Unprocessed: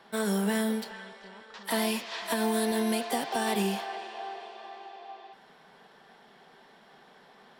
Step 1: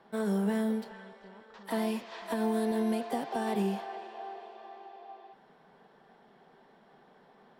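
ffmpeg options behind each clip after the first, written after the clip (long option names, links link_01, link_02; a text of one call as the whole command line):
ffmpeg -i in.wav -af "tiltshelf=frequency=1500:gain=6.5,volume=-7dB" out.wav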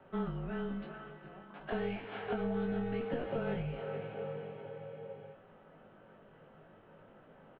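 ffmpeg -i in.wav -filter_complex "[0:a]asplit=2[link_01][link_02];[link_02]adelay=20,volume=-4dB[link_03];[link_01][link_03]amix=inputs=2:normalize=0,acompressor=threshold=-33dB:ratio=2.5,highpass=frequency=310:width_type=q:width=0.5412,highpass=frequency=310:width_type=q:width=1.307,lowpass=frequency=3200:width_type=q:width=0.5176,lowpass=frequency=3200:width_type=q:width=0.7071,lowpass=frequency=3200:width_type=q:width=1.932,afreqshift=-240,volume=1dB" out.wav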